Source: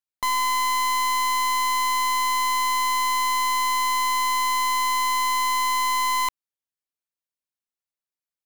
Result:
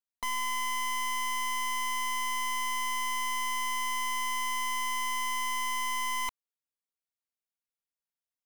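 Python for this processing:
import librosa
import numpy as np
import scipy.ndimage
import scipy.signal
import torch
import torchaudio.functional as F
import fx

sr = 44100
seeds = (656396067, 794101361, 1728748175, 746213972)

y = x + 0.9 * np.pad(x, (int(4.3 * sr / 1000.0), 0))[:len(x)]
y = F.gain(torch.from_numpy(y), -8.5).numpy()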